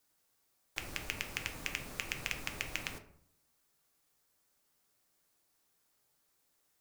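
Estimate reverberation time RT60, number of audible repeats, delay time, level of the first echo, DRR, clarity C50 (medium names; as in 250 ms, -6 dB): 0.65 s, no echo, no echo, no echo, 5.0 dB, 11.0 dB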